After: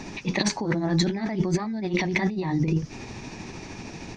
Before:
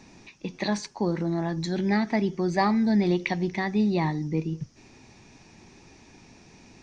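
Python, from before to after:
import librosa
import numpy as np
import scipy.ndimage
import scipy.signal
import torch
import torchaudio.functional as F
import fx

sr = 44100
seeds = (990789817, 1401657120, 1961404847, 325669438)

y = fx.high_shelf(x, sr, hz=5700.0, db=-6.0)
y = fx.over_compress(y, sr, threshold_db=-33.0, ratio=-1.0)
y = fx.stretch_grains(y, sr, factor=0.61, grain_ms=155.0)
y = y * librosa.db_to_amplitude(8.5)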